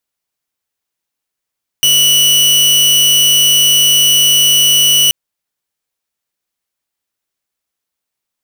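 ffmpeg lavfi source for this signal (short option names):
-f lavfi -i "aevalsrc='0.596*(2*mod(2950*t,1)-1)':d=3.28:s=44100"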